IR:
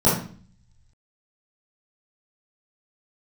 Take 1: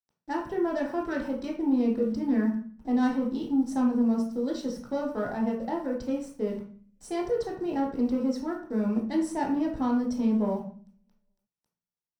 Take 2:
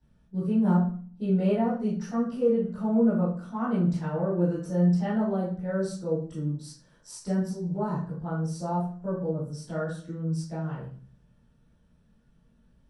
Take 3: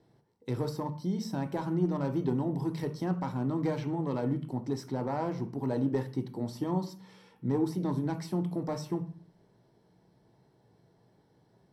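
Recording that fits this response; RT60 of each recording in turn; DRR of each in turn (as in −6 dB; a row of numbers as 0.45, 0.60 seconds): 2; 0.45, 0.45, 0.45 seconds; −2.0, −11.5, 7.0 decibels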